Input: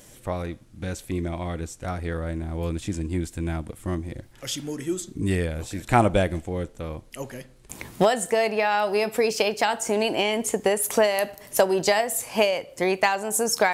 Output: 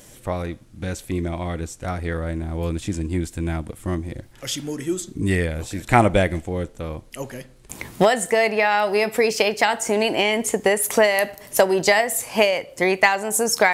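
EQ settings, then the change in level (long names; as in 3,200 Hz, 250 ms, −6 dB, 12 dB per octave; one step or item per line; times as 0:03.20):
dynamic equaliser 2,000 Hz, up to +7 dB, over −45 dBFS, Q 4.2
+3.0 dB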